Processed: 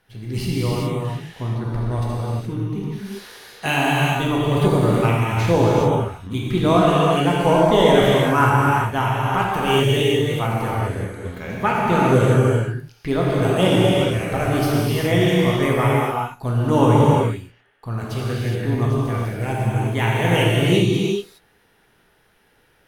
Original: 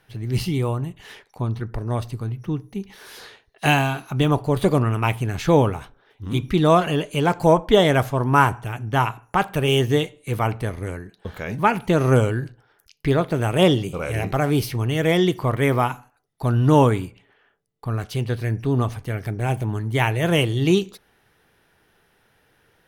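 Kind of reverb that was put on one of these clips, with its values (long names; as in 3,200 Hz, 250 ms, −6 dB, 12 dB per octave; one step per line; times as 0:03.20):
reverb whose tail is shaped and stops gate 440 ms flat, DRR −5.5 dB
level −4 dB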